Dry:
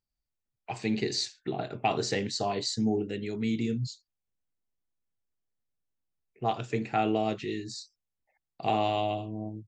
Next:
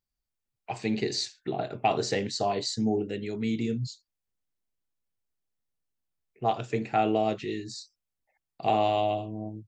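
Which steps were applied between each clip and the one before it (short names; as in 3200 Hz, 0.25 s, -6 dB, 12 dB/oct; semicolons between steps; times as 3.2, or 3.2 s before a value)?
dynamic EQ 610 Hz, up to +4 dB, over -40 dBFS, Q 1.5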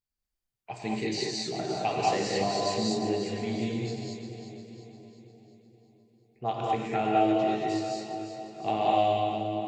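split-band echo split 790 Hz, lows 0.476 s, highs 0.352 s, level -9 dB; non-linear reverb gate 0.25 s rising, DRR -3 dB; gain -5 dB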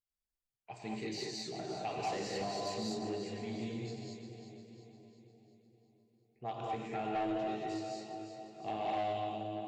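soft clip -20.5 dBFS, distortion -16 dB; gain -8.5 dB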